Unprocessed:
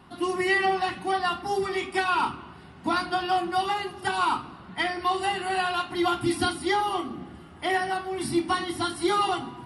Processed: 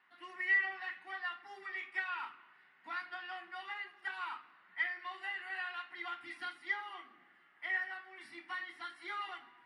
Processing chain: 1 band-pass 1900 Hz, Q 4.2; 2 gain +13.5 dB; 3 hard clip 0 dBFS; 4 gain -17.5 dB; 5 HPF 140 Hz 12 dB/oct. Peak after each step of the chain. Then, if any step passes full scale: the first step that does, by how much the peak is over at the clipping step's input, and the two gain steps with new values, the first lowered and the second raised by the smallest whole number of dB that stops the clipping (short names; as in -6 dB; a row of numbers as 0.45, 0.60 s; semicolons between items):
-17.5, -4.0, -4.0, -21.5, -21.5 dBFS; no overload